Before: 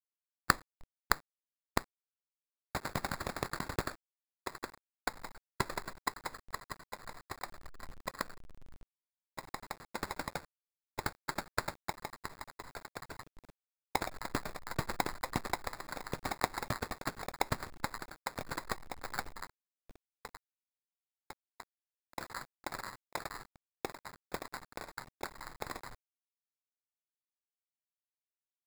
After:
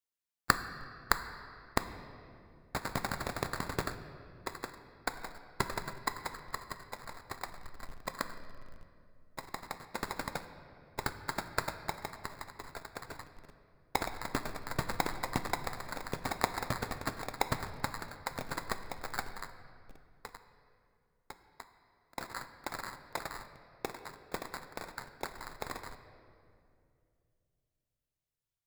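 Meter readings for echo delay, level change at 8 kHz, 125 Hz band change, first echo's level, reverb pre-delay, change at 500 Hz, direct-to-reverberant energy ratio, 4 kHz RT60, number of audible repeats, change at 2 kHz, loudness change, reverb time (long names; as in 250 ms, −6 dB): no echo audible, +1.0 dB, +2.0 dB, no echo audible, 4 ms, +1.5 dB, 9.0 dB, 1.7 s, no echo audible, +1.5 dB, +1.5 dB, 2.5 s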